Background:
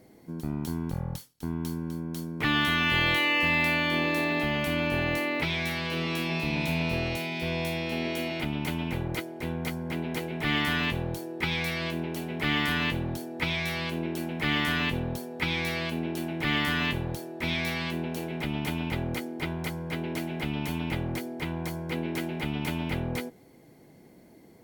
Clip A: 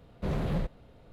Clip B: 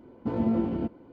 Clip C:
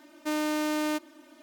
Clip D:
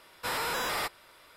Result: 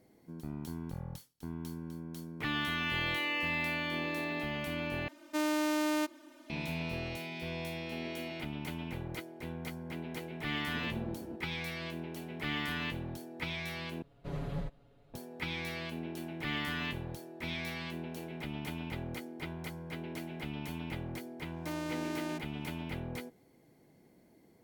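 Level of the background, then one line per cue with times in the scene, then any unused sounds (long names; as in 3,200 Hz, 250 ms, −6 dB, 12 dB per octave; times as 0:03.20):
background −9 dB
0:05.08: overwrite with C −2.5 dB
0:10.49: mix in B −16 dB
0:14.02: overwrite with A −10.5 dB + comb filter 7.1 ms, depth 92%
0:21.40: mix in C −10 dB + high-shelf EQ 12,000 Hz −7.5 dB
not used: D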